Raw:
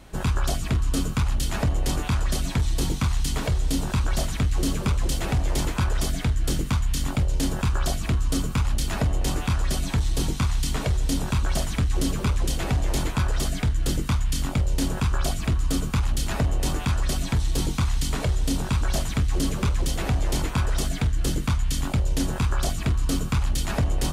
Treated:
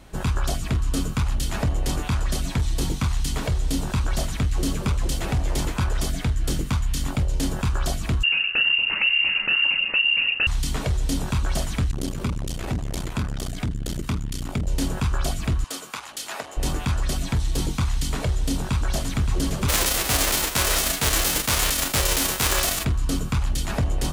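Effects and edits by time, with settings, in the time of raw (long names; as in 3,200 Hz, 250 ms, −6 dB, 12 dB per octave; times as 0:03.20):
0:08.23–0:10.47: voice inversion scrambler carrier 2,800 Hz
0:11.91–0:14.67: saturating transformer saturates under 130 Hz
0:15.64–0:16.57: high-pass filter 600 Hz
0:18.41–0:19.18: delay throw 570 ms, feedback 65%, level −8.5 dB
0:19.68–0:22.83: spectral envelope flattened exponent 0.3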